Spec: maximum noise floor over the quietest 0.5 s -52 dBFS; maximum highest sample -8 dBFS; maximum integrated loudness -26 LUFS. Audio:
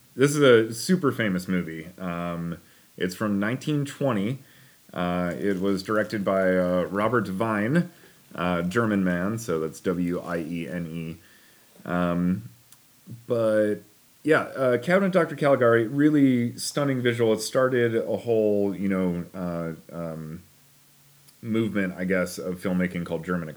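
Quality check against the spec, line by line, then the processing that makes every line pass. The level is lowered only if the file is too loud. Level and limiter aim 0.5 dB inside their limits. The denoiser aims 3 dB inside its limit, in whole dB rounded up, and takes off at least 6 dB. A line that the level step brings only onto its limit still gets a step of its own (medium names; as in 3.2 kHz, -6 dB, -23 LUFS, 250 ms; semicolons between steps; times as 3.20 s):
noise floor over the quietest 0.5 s -57 dBFS: pass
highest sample -4.5 dBFS: fail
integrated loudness -25.0 LUFS: fail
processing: trim -1.5 dB; peak limiter -8.5 dBFS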